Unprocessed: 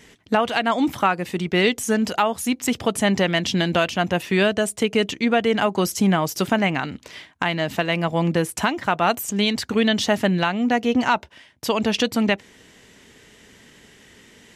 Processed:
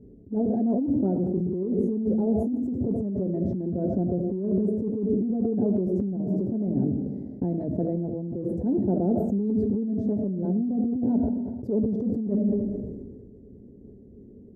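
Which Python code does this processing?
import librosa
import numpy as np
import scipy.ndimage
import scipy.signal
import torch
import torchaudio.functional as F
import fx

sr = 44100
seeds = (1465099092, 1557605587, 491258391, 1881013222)

y = scipy.signal.sosfilt(scipy.signal.cheby2(4, 50, 1100.0, 'lowpass', fs=sr, output='sos'), x)
y = fx.rev_freeverb(y, sr, rt60_s=0.89, hf_ratio=1.0, predelay_ms=40, drr_db=8.0)
y = fx.over_compress(y, sr, threshold_db=-27.0, ratio=-1.0)
y = fx.notch_comb(y, sr, f0_hz=160.0)
y = fx.sustainer(y, sr, db_per_s=32.0)
y = y * librosa.db_to_amplitude(2.5)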